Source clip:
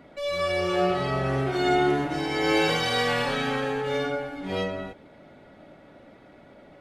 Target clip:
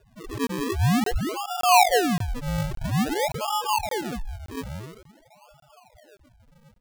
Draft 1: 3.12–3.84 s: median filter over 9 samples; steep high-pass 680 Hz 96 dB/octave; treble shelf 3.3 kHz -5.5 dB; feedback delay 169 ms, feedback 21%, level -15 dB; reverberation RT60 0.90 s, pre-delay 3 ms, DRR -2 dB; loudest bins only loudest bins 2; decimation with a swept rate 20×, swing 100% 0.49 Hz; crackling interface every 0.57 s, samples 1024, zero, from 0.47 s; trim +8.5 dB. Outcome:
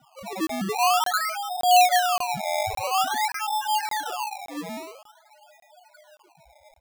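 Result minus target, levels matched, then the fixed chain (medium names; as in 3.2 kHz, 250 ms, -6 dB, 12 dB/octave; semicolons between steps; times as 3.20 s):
decimation with a swept rate: distortion -29 dB
3.12–3.84 s: median filter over 9 samples; steep high-pass 680 Hz 96 dB/octave; treble shelf 3.3 kHz -5.5 dB; feedback delay 169 ms, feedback 21%, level -15 dB; reverberation RT60 0.90 s, pre-delay 3 ms, DRR -2 dB; loudest bins only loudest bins 2; decimation with a swept rate 42×, swing 100% 0.49 Hz; crackling interface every 0.57 s, samples 1024, zero, from 0.47 s; trim +8.5 dB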